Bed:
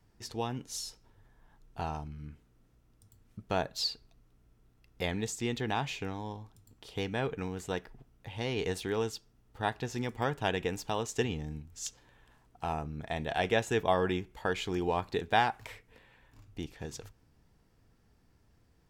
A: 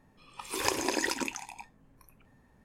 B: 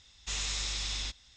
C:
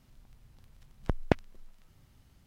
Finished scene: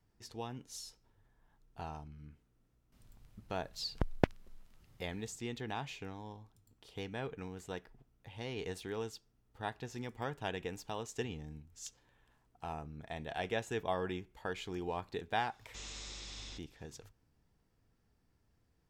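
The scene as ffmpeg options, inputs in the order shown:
-filter_complex "[0:a]volume=-8dB[a];[2:a]equalizer=f=320:t=o:w=2.1:g=10[b];[3:a]atrim=end=2.46,asetpts=PTS-STARTPTS,volume=-3.5dB,afade=t=in:d=0.004:c=hsin,afade=t=out:st=2.456:d=0.004:c=hsin,adelay=2920[c];[b]atrim=end=1.36,asetpts=PTS-STARTPTS,volume=-13dB,afade=t=in:d=0.004:c=hsin,afade=t=out:st=1.356:d=0.004:c=hsin,adelay=15470[d];[a][c][d]amix=inputs=3:normalize=0"

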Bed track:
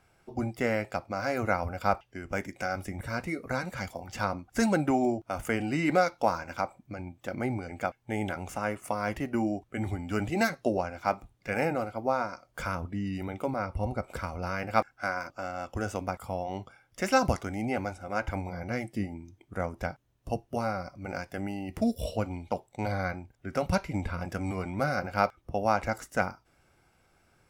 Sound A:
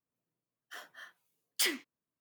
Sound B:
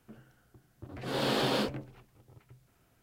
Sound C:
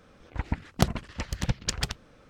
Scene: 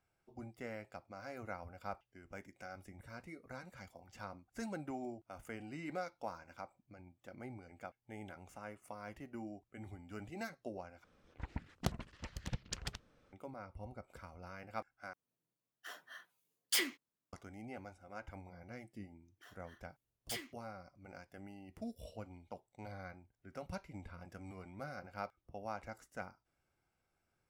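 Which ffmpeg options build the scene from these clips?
-filter_complex "[1:a]asplit=2[a][b];[0:a]volume=-17.5dB,asplit=3[c][d][e];[c]atrim=end=11.044[f];[3:a]atrim=end=2.29,asetpts=PTS-STARTPTS,volume=-13.5dB[g];[d]atrim=start=13.326:end=15.134[h];[a]atrim=end=2.2,asetpts=PTS-STARTPTS,volume=-2.5dB[i];[e]atrim=start=17.326[j];[b]atrim=end=2.2,asetpts=PTS-STARTPTS,volume=-13dB,afade=t=in:d=0.004:c=hsin,afade=t=out:st=2.196:d=0.004:c=hsin,adelay=18700[k];[f][g]acrossfade=d=0.004:c1=hsin:c2=hsin[l];[l][h]acrossfade=d=0.004:c1=hsin:c2=hsin[m];[m][i]acrossfade=d=0.004:c1=hsin:c2=hsin[n];[n][j]acrossfade=d=0.004:c1=hsin:c2=hsin[o];[o][k]amix=inputs=2:normalize=0"

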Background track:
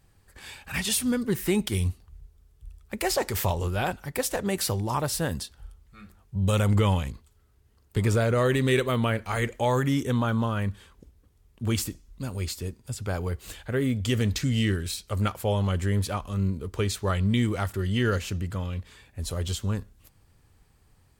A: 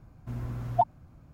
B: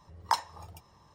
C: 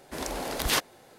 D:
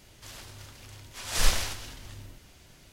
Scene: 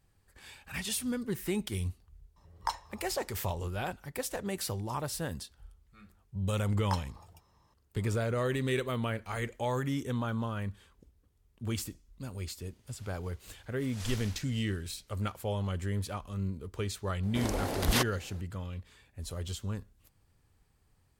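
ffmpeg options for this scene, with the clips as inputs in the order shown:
-filter_complex "[2:a]asplit=2[a][b];[0:a]volume=-8dB[c];[3:a]lowshelf=f=400:g=8.5[d];[a]atrim=end=1.14,asetpts=PTS-STARTPTS,volume=-6dB,afade=t=in:d=0.004:c=hsin,afade=t=out:st=1.136:d=0.004:c=hsin,adelay=2360[e];[b]atrim=end=1.14,asetpts=PTS-STARTPTS,volume=-8dB,afade=t=in:d=0.004:c=hsin,afade=t=out:st=1.136:d=0.004:c=hsin,adelay=6600[f];[4:a]atrim=end=2.92,asetpts=PTS-STARTPTS,volume=-16dB,afade=t=in:d=0.004:c=hsin,afade=t=out:st=2.916:d=0.004:c=hsin,adelay=12650[g];[d]atrim=end=1.18,asetpts=PTS-STARTPTS,volume=-4dB,afade=t=in:d=0.004:c=hsin,afade=t=out:st=1.176:d=0.004:c=hsin,adelay=17230[h];[c][e][f][g][h]amix=inputs=5:normalize=0"

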